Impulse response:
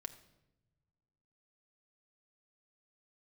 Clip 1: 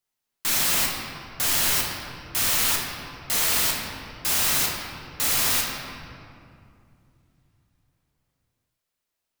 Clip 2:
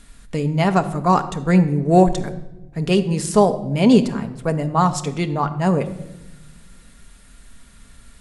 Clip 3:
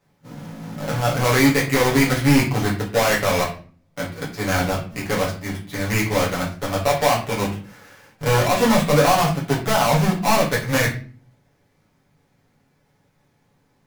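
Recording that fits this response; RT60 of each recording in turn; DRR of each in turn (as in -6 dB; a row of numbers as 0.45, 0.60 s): 2; 2.5 s, not exponential, 0.40 s; -2.0, 7.0, -6.5 dB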